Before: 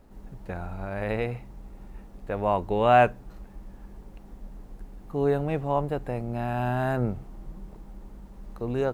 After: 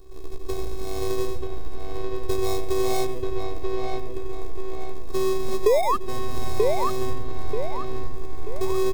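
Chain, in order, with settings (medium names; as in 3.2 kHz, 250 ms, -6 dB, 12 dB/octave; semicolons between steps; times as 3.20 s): square wave that keeps the level; robot voice 379 Hz; on a send at -18.5 dB: resonant low shelf 700 Hz +9.5 dB, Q 3 + reverberation RT60 0.30 s, pre-delay 84 ms; on the sum: painted sound rise, 5.66–5.97 s, 400–1300 Hz -5 dBFS; FFT filter 160 Hz 0 dB, 330 Hz +6 dB, 1.2 kHz -4 dB, 2.2 kHz -26 dB, 3.8 kHz +1 dB; in parallel at -7 dB: sample-and-hold 30×; on the sum: compression 6:1, threshold -21 dBFS, peak gain reduction 20 dB; comb 1.9 ms, depth 49%; feedback echo behind a low-pass 935 ms, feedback 41%, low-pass 3.3 kHz, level -3.5 dB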